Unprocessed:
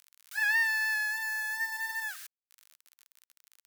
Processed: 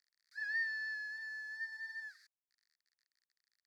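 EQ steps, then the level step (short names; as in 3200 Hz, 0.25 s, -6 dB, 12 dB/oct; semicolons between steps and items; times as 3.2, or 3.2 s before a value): double band-pass 2900 Hz, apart 1.3 oct; -8.5 dB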